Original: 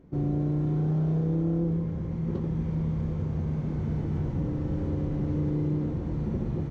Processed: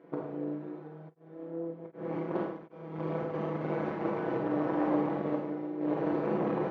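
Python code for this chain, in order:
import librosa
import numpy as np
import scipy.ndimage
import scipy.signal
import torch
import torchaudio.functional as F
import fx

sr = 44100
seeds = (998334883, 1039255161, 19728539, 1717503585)

y = x + 0.89 * np.pad(x, (int(6.1 * sr / 1000.0), 0))[:len(x)]
y = fx.over_compress(y, sr, threshold_db=-26.0, ratio=-0.5)
y = fx.cheby_harmonics(y, sr, harmonics=(4,), levels_db=(-13,), full_scale_db=-14.0)
y = fx.bandpass_edges(y, sr, low_hz=500.0, high_hz=2200.0)
y = fx.rev_schroeder(y, sr, rt60_s=0.69, comb_ms=30, drr_db=-0.5)
y = fx.tremolo_abs(y, sr, hz=1.3, at=(1.08, 3.33), fade=0.02)
y = y * 10.0 ** (2.5 / 20.0)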